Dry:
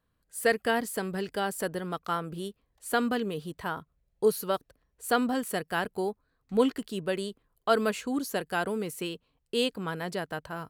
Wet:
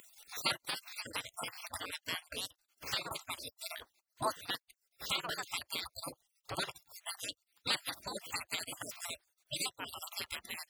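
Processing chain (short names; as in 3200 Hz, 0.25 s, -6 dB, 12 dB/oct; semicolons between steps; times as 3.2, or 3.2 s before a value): random spectral dropouts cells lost 49%; HPF 120 Hz 12 dB/oct; spectral gate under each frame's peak -25 dB weak; high shelf 9300 Hz -6.5 dB; upward compressor, threshold -43 dBFS; gain +10.5 dB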